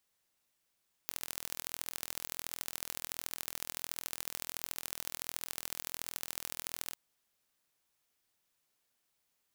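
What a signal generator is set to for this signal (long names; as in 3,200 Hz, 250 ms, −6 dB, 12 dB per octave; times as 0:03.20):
impulse train 41.4 per second, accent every 3, −9 dBFS 5.86 s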